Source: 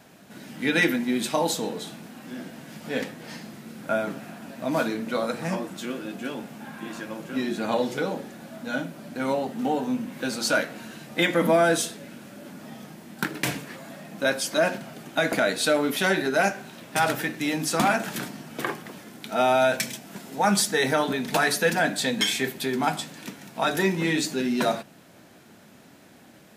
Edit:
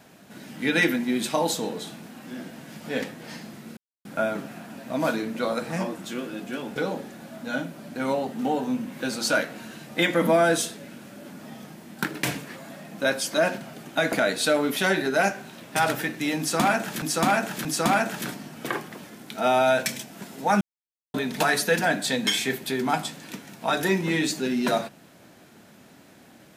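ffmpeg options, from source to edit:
-filter_complex "[0:a]asplit=7[a][b][c][d][e][f][g];[a]atrim=end=3.77,asetpts=PTS-STARTPTS,afade=t=out:st=3.766:d=0.004:c=hsin,apad=pad_dur=0.28[h];[b]atrim=start=3.77:end=6.482,asetpts=PTS-STARTPTS,afade=t=in:d=0.004:c=hsin[i];[c]atrim=start=7.958:end=18.222[j];[d]atrim=start=17.588:end=18.222[k];[e]atrim=start=17.588:end=20.55,asetpts=PTS-STARTPTS,afade=t=out:st=2.958:d=0.004:c=hsin[l];[f]atrim=start=20.55:end=21.08,asetpts=PTS-STARTPTS,volume=0[m];[g]atrim=start=21.08,asetpts=PTS-STARTPTS,afade=t=in:d=0.004:c=hsin[n];[h][i]concat=n=2:v=0:a=1[o];[o][j]acrossfade=d=0.004:c1=hsin:c2=hsin[p];[p][k]acrossfade=d=0.004:c1=hsin:c2=hsin[q];[l][m][n]concat=n=3:v=0:a=1[r];[q][r]acrossfade=d=0.004:c1=hsin:c2=hsin"

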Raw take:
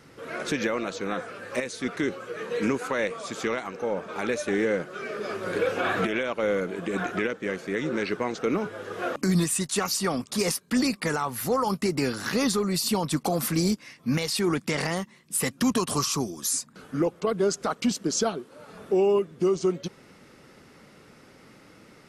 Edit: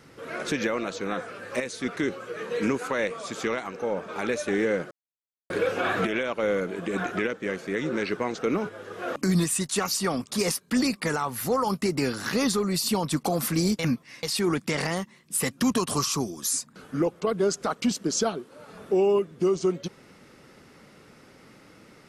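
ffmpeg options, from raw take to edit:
-filter_complex "[0:a]asplit=7[a][b][c][d][e][f][g];[a]atrim=end=4.91,asetpts=PTS-STARTPTS,afade=t=out:st=4.906:d=0.004:c=hsin[h];[b]atrim=start=4.91:end=5.5,asetpts=PTS-STARTPTS,volume=0[i];[c]atrim=start=5.5:end=8.692,asetpts=PTS-STARTPTS,afade=t=in:d=0.004:c=hsin[j];[d]atrim=start=8.688:end=9.082,asetpts=PTS-STARTPTS,volume=-3.5dB[k];[e]atrim=start=9.078:end=13.792[l];[f]atrim=start=13.788:end=14.232,asetpts=PTS-STARTPTS,areverse[m];[g]atrim=start=14.228[n];[h][i][j]concat=n=3:v=0:a=1[o];[o][k]acrossfade=d=0.004:c1=hsin:c2=hsin[p];[p][l]acrossfade=d=0.004:c1=hsin:c2=hsin[q];[q][m]acrossfade=d=0.004:c1=hsin:c2=hsin[r];[r][n]acrossfade=d=0.004:c1=hsin:c2=hsin"

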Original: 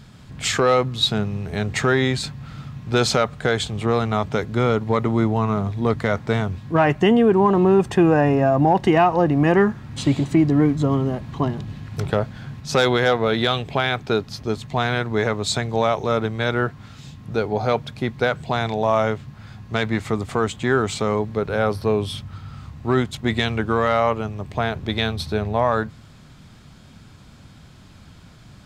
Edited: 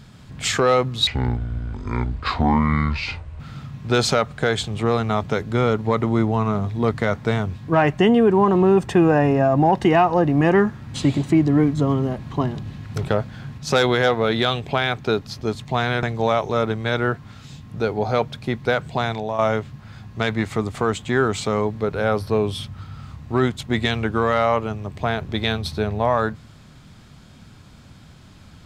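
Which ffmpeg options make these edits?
-filter_complex "[0:a]asplit=5[a][b][c][d][e];[a]atrim=end=1.074[f];[b]atrim=start=1.07:end=2.42,asetpts=PTS-STARTPTS,asetrate=25578,aresample=44100[g];[c]atrim=start=2.416:end=15.052[h];[d]atrim=start=15.568:end=18.93,asetpts=PTS-STARTPTS,afade=t=out:st=2.992:d=0.37:silence=0.375837[i];[e]atrim=start=18.93,asetpts=PTS-STARTPTS,afade=t=in:d=0.004:c=hsin:silence=0.375837[j];[f][g]acrossfade=d=0.004:c1=hsin:c2=hsin[k];[k][h]acrossfade=d=0.004:c1=hsin:c2=hsin[l];[i][j]concat=n=2:v=0:a=1[m];[l][m]acrossfade=d=0.004:c1=hsin:c2=hsin"

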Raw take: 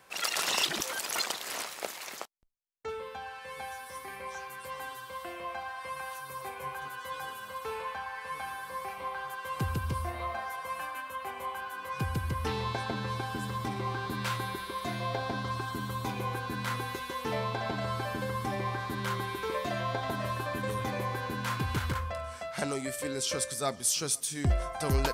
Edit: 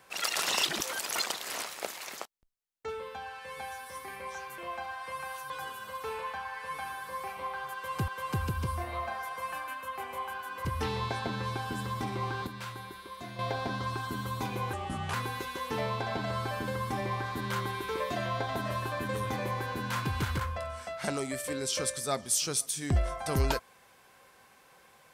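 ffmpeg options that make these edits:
-filter_complex "[0:a]asplit=9[a][b][c][d][e][f][g][h][i];[a]atrim=end=4.582[j];[b]atrim=start=5.348:end=6.272[k];[c]atrim=start=7.108:end=9.692[l];[d]atrim=start=9.348:end=11.922[m];[e]atrim=start=12.288:end=14.112[n];[f]atrim=start=14.108:end=15.032,asetpts=PTS-STARTPTS,volume=-8dB[o];[g]atrim=start=15.028:end=16.374[p];[h]atrim=start=16.37:end=16.68,asetpts=PTS-STARTPTS,asetrate=33516,aresample=44100,atrim=end_sample=17988,asetpts=PTS-STARTPTS[q];[i]atrim=start=16.676[r];[j][k]acrossfade=d=0.004:c1=hsin:c2=hsin[s];[s][l]acrossfade=d=0.004:c1=hsin:c2=hsin[t];[t][m]acrossfade=d=0.004:c1=hsin:c2=hsin[u];[u][n]acrossfade=d=0.004:c1=hsin:c2=hsin[v];[v][o]acrossfade=d=0.004:c1=hsin:c2=hsin[w];[w][p]acrossfade=d=0.004:c1=hsin:c2=hsin[x];[x][q]acrossfade=d=0.004:c1=hsin:c2=hsin[y];[y][r]acrossfade=d=0.004:c1=hsin:c2=hsin"

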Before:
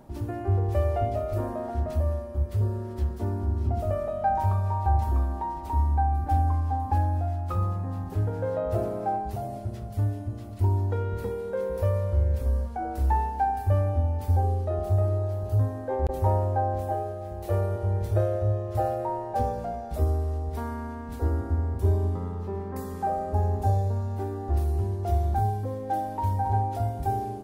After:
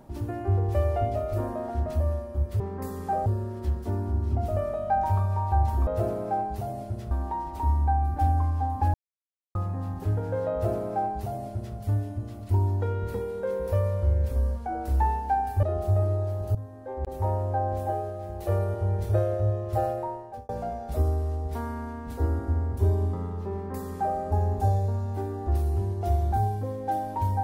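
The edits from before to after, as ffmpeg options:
-filter_complex "[0:a]asplit=10[a][b][c][d][e][f][g][h][i][j];[a]atrim=end=2.602[k];[b]atrim=start=22.538:end=23.202[l];[c]atrim=start=2.598:end=5.212[m];[d]atrim=start=8.618:end=9.862[n];[e]atrim=start=5.208:end=7.04,asetpts=PTS-STARTPTS,afade=t=out:st=1.828:d=0.004:c=hsin[o];[f]atrim=start=7.04:end=7.65,asetpts=PTS-STARTPTS,volume=0[p];[g]atrim=start=7.65:end=13.732,asetpts=PTS-STARTPTS,afade=t=in:d=0.004:c=hsin[q];[h]atrim=start=14.648:end=15.57,asetpts=PTS-STARTPTS,afade=t=out:st=0.918:d=0.004:c=hsin:silence=0.188365[r];[i]atrim=start=15.57:end=19.51,asetpts=PTS-STARTPTS,afade=t=in:d=1.26:silence=0.188365,afade=t=out:st=3.35:d=0.59[s];[j]atrim=start=19.51,asetpts=PTS-STARTPTS,afade=t=in:d=0.004:c=hsin[t];[k][l]acrossfade=d=0.004:c1=hsin:c2=hsin[u];[u][m]acrossfade=d=0.004:c1=hsin:c2=hsin[v];[v][n]acrossfade=d=0.004:c1=hsin:c2=hsin[w];[o][p][q]concat=n=3:v=0:a=1[x];[w][x]acrossfade=d=0.004:c1=hsin:c2=hsin[y];[r][s][t]concat=n=3:v=0:a=1[z];[y][z]acrossfade=d=0.004:c1=hsin:c2=hsin"

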